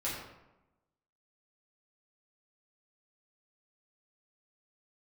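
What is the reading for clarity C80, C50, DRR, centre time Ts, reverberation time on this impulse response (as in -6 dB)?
4.5 dB, 2.0 dB, -8.0 dB, 58 ms, 0.95 s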